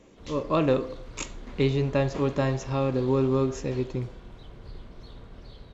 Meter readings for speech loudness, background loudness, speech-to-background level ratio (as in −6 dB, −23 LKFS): −26.5 LKFS, −46.0 LKFS, 19.5 dB